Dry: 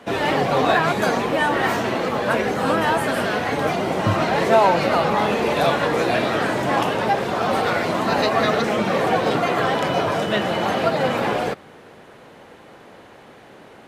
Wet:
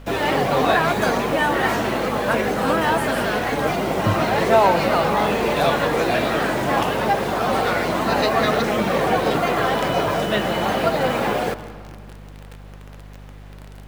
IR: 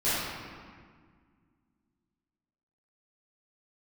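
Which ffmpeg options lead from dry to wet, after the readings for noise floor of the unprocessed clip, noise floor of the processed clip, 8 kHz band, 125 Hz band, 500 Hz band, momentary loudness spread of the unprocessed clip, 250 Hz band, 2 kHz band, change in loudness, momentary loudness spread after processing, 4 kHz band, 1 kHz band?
-46 dBFS, -39 dBFS, +2.0 dB, +0.5 dB, 0.0 dB, 4 LU, +0.5 dB, 0.0 dB, 0.0 dB, 4 LU, 0.0 dB, 0.0 dB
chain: -filter_complex "[0:a]acrusher=bits=7:dc=4:mix=0:aa=0.000001,aeval=exprs='val(0)+0.0112*(sin(2*PI*50*n/s)+sin(2*PI*2*50*n/s)/2+sin(2*PI*3*50*n/s)/3+sin(2*PI*4*50*n/s)/4+sin(2*PI*5*50*n/s)/5)':c=same,asplit=2[s0][s1];[1:a]atrim=start_sample=2205,adelay=127[s2];[s1][s2]afir=irnorm=-1:irlink=0,volume=0.0422[s3];[s0][s3]amix=inputs=2:normalize=0"

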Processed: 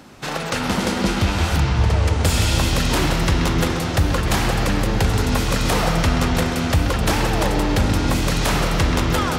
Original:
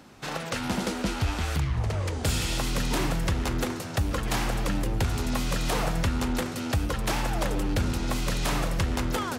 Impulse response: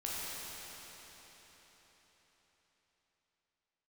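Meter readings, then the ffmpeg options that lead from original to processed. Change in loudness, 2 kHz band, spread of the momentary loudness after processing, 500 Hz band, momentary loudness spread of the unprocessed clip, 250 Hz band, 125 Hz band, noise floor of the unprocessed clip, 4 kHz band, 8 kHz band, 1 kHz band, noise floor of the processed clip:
+9.0 dB, +9.0 dB, 2 LU, +9.0 dB, 2 LU, +8.5 dB, +9.5 dB, -35 dBFS, +9.0 dB, +7.5 dB, +9.0 dB, -26 dBFS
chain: -filter_complex "[0:a]asplit=2[s0][s1];[s1]lowpass=f=6000:w=0.5412,lowpass=f=6000:w=1.3066[s2];[1:a]atrim=start_sample=2205,adelay=131[s3];[s2][s3]afir=irnorm=-1:irlink=0,volume=0.531[s4];[s0][s4]amix=inputs=2:normalize=0,volume=2.24"

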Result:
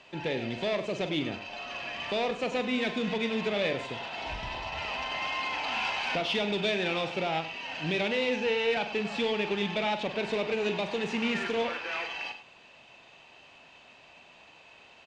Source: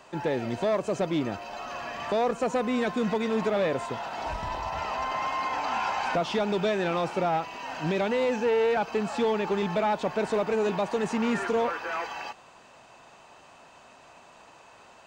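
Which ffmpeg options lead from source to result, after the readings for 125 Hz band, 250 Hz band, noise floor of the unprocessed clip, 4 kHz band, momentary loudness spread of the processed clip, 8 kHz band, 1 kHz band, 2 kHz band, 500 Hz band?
-3.5 dB, -3.5 dB, -53 dBFS, +6.0 dB, 8 LU, -4.0 dB, -6.0 dB, +2.5 dB, -4.5 dB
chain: -af "adynamicsmooth=sensitivity=1:basefreq=2700,highshelf=f=1900:t=q:w=1.5:g=12.5,aecho=1:1:43.73|99.13:0.316|0.251,volume=0.631"

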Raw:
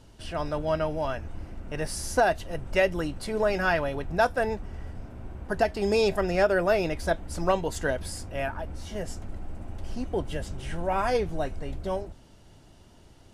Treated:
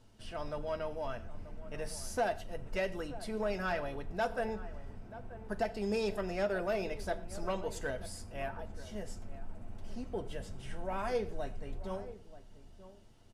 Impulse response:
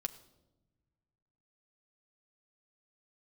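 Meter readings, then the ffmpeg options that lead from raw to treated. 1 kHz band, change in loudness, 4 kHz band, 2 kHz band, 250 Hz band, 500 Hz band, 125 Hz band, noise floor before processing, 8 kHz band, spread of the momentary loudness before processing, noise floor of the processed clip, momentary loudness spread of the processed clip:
-10.0 dB, -10.0 dB, -10.0 dB, -11.0 dB, -8.5 dB, -10.0 dB, -10.5 dB, -53 dBFS, -9.0 dB, 17 LU, -55 dBFS, 16 LU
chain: -filter_complex "[0:a]asoftclip=type=tanh:threshold=0.168,asplit=2[s0][s1];[s1]adelay=932.9,volume=0.178,highshelf=f=4000:g=-21[s2];[s0][s2]amix=inputs=2:normalize=0[s3];[1:a]atrim=start_sample=2205,afade=t=out:st=0.18:d=0.01,atrim=end_sample=8379[s4];[s3][s4]afir=irnorm=-1:irlink=0,volume=0.376"

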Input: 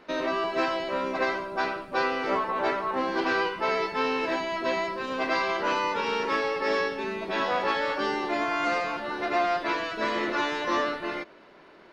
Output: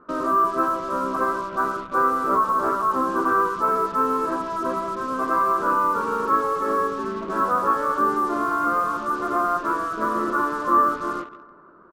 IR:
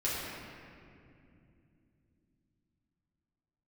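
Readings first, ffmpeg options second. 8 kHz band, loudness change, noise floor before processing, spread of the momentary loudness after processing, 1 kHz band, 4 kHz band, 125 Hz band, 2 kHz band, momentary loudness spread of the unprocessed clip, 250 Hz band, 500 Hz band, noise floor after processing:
no reading, +5.5 dB, -52 dBFS, 6 LU, +8.0 dB, under -10 dB, +5.5 dB, -1.5 dB, 4 LU, +4.5 dB, +1.0 dB, -45 dBFS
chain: -filter_complex "[0:a]firequalizer=gain_entry='entry(280,0);entry(820,-10);entry(1200,10);entry(2000,-23);entry(3200,-29)':delay=0.05:min_phase=1,aecho=1:1:159|318|477|636|795:0.178|0.096|0.0519|0.028|0.0151,asplit=2[s0][s1];[s1]acrusher=bits=5:mix=0:aa=0.5,volume=0.447[s2];[s0][s2]amix=inputs=2:normalize=0,volume=1.26"

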